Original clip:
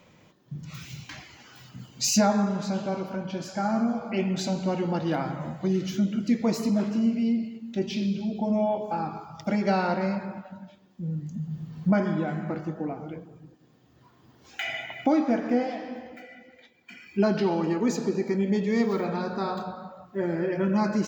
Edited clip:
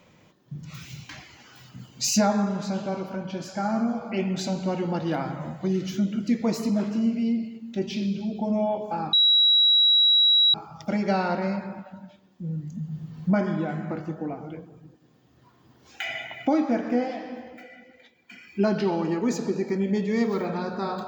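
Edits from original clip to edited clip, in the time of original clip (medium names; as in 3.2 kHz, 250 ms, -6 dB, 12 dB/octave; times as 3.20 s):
9.13 s: add tone 3.88 kHz -15 dBFS 1.41 s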